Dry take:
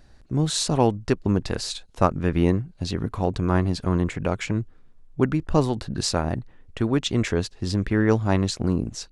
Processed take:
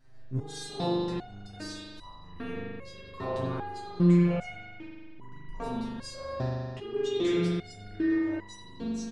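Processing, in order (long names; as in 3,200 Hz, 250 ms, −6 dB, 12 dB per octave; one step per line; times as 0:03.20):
0:06.30–0:08.68: parametric band 410 Hz +8 dB 0.5 octaves
brickwall limiter −14 dBFS, peak gain reduction 11 dB
repeating echo 95 ms, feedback 40%, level −15 dB
spring reverb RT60 1.9 s, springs 40 ms, chirp 55 ms, DRR −8 dB
step-sequenced resonator 2.5 Hz 130–970 Hz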